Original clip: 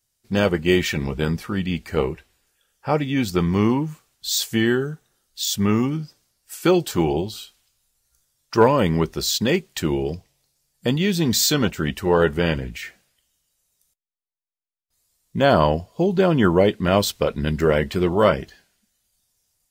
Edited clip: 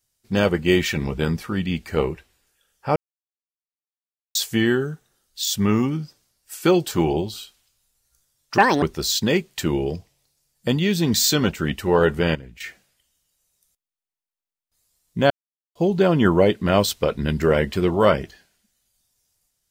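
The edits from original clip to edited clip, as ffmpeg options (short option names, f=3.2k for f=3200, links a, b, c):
-filter_complex "[0:a]asplit=9[a][b][c][d][e][f][g][h][i];[a]atrim=end=2.96,asetpts=PTS-STARTPTS,afade=t=out:st=2.956:d=0.004:c=hsin[j];[b]atrim=start=2.96:end=4.35,asetpts=PTS-STARTPTS,volume=0[k];[c]atrim=start=4.35:end=8.584,asetpts=PTS-STARTPTS,afade=t=in:d=0.004:c=hsin[l];[d]atrim=start=8.58:end=9.01,asetpts=PTS-STARTPTS,asetrate=78057,aresample=44100[m];[e]atrim=start=9.006:end=12.542[n];[f]atrim=start=12.538:end=12.792,asetpts=PTS-STARTPTS,volume=-11.5dB[o];[g]atrim=start=12.788:end=15.49,asetpts=PTS-STARTPTS,afade=t=out:st=2.698:d=0.004:c=hsin[p];[h]atrim=start=15.49:end=15.94,asetpts=PTS-STARTPTS,volume=0[q];[i]atrim=start=15.94,asetpts=PTS-STARTPTS,afade=t=in:d=0.004:c=hsin[r];[j][k][l]concat=n=3:v=0:a=1[s];[s][m]acrossfade=d=0.004:c1=hsin:c2=hsin[t];[t][n]acrossfade=d=0.004:c1=hsin:c2=hsin[u];[u][o]acrossfade=d=0.004:c1=hsin:c2=hsin[v];[p][q][r]concat=n=3:v=0:a=1[w];[v][w]acrossfade=d=0.004:c1=hsin:c2=hsin"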